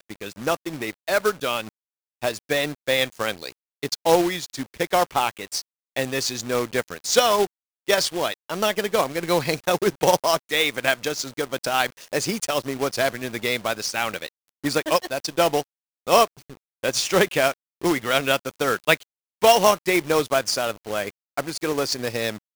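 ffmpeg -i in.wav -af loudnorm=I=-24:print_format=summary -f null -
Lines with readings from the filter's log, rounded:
Input Integrated:    -23.1 LUFS
Input True Peak:      -3.3 dBTP
Input LRA:             4.2 LU
Input Threshold:     -33.3 LUFS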